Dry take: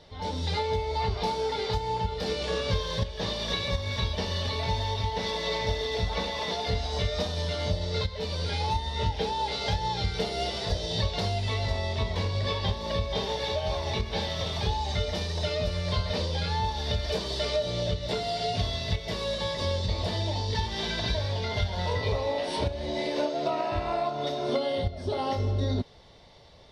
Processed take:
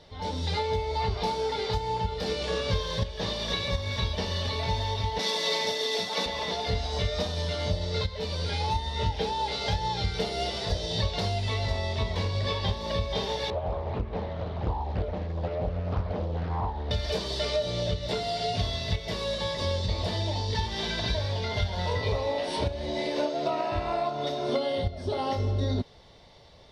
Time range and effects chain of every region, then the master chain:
0:05.19–0:06.26: high-pass filter 190 Hz 24 dB per octave + high-shelf EQ 4,500 Hz +12 dB
0:13.50–0:16.91: Bessel low-pass filter 970 Hz + highs frequency-modulated by the lows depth 0.86 ms
whole clip: no processing

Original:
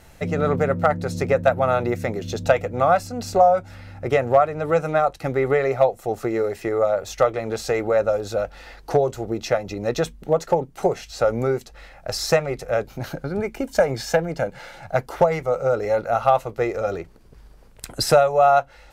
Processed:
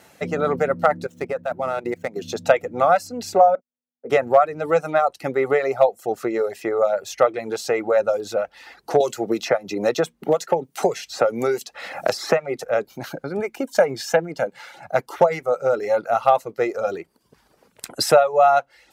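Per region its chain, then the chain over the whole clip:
0:01.06–0:02.16: running median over 9 samples + output level in coarse steps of 12 dB
0:03.55–0:04.10: pair of resonant band-passes 330 Hz, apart 0.85 octaves + noise gate −40 dBFS, range −34 dB
0:09.00–0:12.64: high-pass filter 85 Hz + multiband upward and downward compressor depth 100%
whole clip: reverb reduction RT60 0.62 s; high-pass filter 210 Hz 12 dB per octave; level +1.5 dB

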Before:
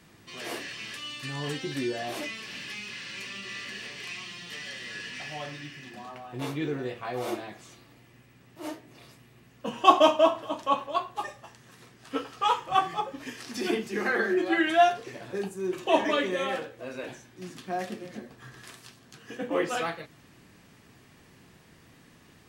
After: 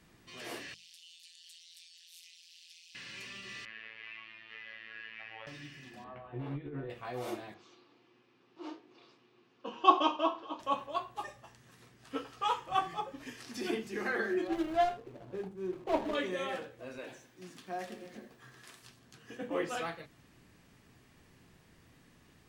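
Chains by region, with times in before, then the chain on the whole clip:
0:00.74–0:02.95: amplitude modulation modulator 170 Hz, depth 100% + inverse Chebyshev high-pass filter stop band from 780 Hz, stop band 70 dB
0:03.65–0:05.47: low-pass filter 2,300 Hz 24 dB per octave + spectral tilt +4.5 dB per octave + phases set to zero 111 Hz
0:06.04–0:06.90: compressor whose output falls as the input rises −35 dBFS + high-frequency loss of the air 480 metres + double-tracking delay 14 ms −4 dB
0:07.54–0:10.60: loudspeaker in its box 320–5,100 Hz, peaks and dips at 350 Hz +7 dB, 1,100 Hz +3 dB, 1,900 Hz −8 dB + notch filter 620 Hz, Q 6
0:14.47–0:16.15: running median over 25 samples + high-shelf EQ 4,500 Hz −6.5 dB
0:16.98–0:18.83: high-pass filter 230 Hz 6 dB per octave + feedback echo at a low word length 86 ms, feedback 55%, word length 9 bits, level −14.5 dB
whole clip: low-shelf EQ 70 Hz +10.5 dB; mains-hum notches 50/100/150/200 Hz; level −7 dB

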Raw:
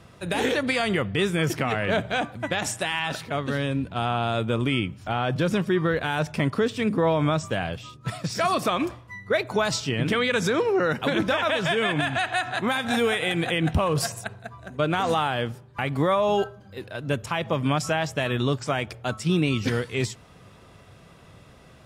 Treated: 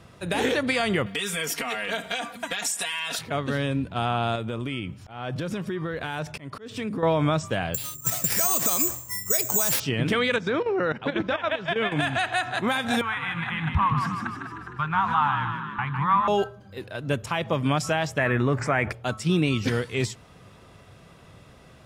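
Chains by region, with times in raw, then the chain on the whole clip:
0:01.06–0:03.19: spectral tilt +3.5 dB per octave + downward compressor, threshold −27 dBFS + comb filter 4.3 ms, depth 97%
0:04.35–0:07.03: downward compressor 4 to 1, threshold −27 dBFS + volume swells 186 ms
0:07.74–0:09.80: downward compressor 5 to 1, threshold −27 dBFS + bad sample-rate conversion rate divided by 6×, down none, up zero stuff
0:10.36–0:11.92: low-pass filter 3,700 Hz + output level in coarse steps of 12 dB
0:13.01–0:16.28: drawn EQ curve 140 Hz 0 dB, 340 Hz −23 dB, 590 Hz −26 dB, 930 Hz +8 dB, 8,300 Hz −22 dB + echo with shifted repeats 153 ms, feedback 59%, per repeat +44 Hz, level −6.5 dB
0:18.18–0:18.92: high shelf with overshoot 2,600 Hz −8.5 dB, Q 3 + envelope flattener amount 50%
whole clip: no processing

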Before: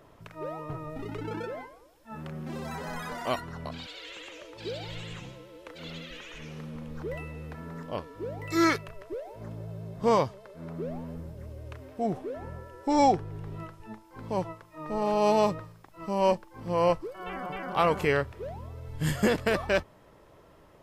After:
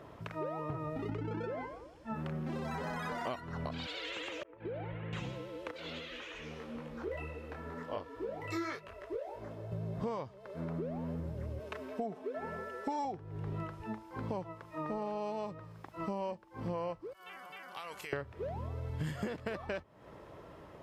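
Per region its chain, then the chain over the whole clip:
0:01.09–0:02.14: low-pass filter 8,700 Hz + low-shelf EQ 240 Hz +7.5 dB + notch filter 3,800 Hz, Q 17
0:04.43–0:05.13: low-pass filter 2,000 Hz 24 dB per octave + downward expander −39 dBFS + downward compressor, threshold −40 dBFS
0:05.71–0:09.72: parametric band 150 Hz −12 dB 0.95 octaves + micro pitch shift up and down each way 30 cents
0:11.59–0:13.05: high-pass filter 340 Hz 6 dB per octave + comb filter 4.6 ms, depth 84%
0:17.13–0:18.13: first-order pre-emphasis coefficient 0.97 + downward compressor 10 to 1, threshold −42 dBFS
whole clip: high-pass filter 55 Hz; high-shelf EQ 5,500 Hz −11 dB; downward compressor 12 to 1, threshold −39 dBFS; level +4.5 dB

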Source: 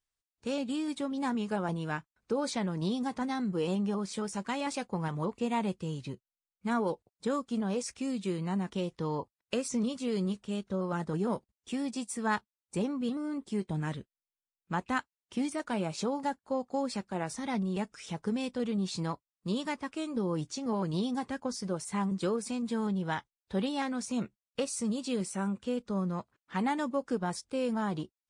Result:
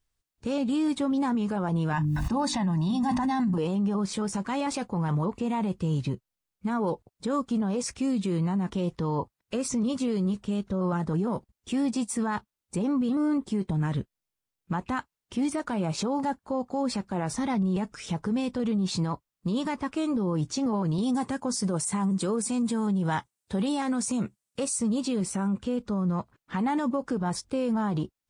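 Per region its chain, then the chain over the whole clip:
0:01.93–0:03.58: mains-hum notches 50/100/150/200/250/300 Hz + comb filter 1.1 ms, depth 100% + level that may fall only so fast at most 24 dB per second
0:20.98–0:24.79: high-pass filter 92 Hz + parametric band 8,500 Hz +10.5 dB 0.79 octaves
whole clip: low-shelf EQ 290 Hz +10.5 dB; brickwall limiter −26.5 dBFS; dynamic equaliser 1,000 Hz, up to +5 dB, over −53 dBFS, Q 1.2; level +5.5 dB

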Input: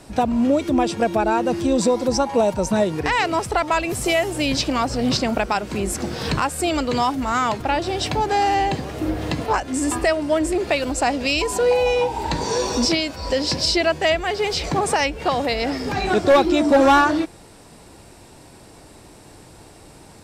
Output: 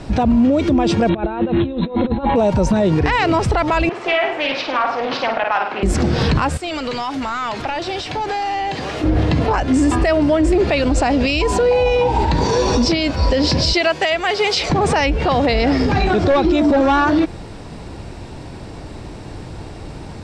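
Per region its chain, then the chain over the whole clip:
0:01.09–0:02.36: mains-hum notches 50/100/150/200/250/300/350/400 Hz + compressor whose output falls as the input rises −26 dBFS, ratio −0.5 + linear-phase brick-wall low-pass 4,200 Hz
0:03.89–0:05.83: band-pass filter 770–2,200 Hz + flutter between parallel walls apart 8.7 metres, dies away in 0.51 s + highs frequency-modulated by the lows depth 0.21 ms
0:06.57–0:09.04: first-order pre-emphasis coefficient 0.8 + downward compressor 10 to 1, threshold −37 dBFS + mid-hump overdrive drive 21 dB, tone 2,500 Hz, clips at −19.5 dBFS
0:13.73–0:14.70: high-pass filter 770 Hz 6 dB per octave + high-shelf EQ 8,100 Hz +8 dB + notch filter 1,700 Hz, Q 29
whole clip: low-pass filter 4,800 Hz 12 dB per octave; low-shelf EQ 200 Hz +9 dB; boost into a limiter +16 dB; level −7 dB

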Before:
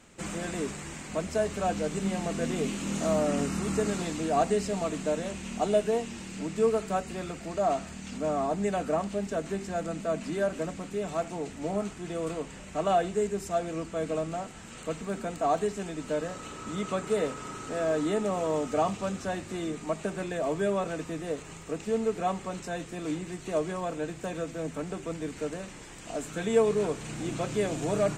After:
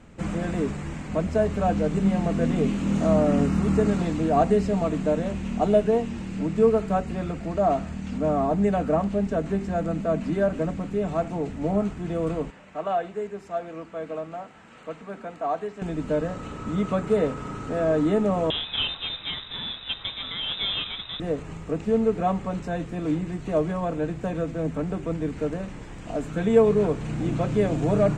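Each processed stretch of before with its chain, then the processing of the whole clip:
0:12.50–0:15.82: high-pass filter 1,000 Hz 6 dB per octave + high-shelf EQ 4,100 Hz −11.5 dB
0:18.50–0:21.20: low-shelf EQ 90 Hz +11.5 dB + log-companded quantiser 4 bits + voice inversion scrambler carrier 3,800 Hz
whole clip: low-pass filter 1,700 Hz 6 dB per octave; low-shelf EQ 210 Hz +8.5 dB; notch filter 370 Hz, Q 12; level +4.5 dB

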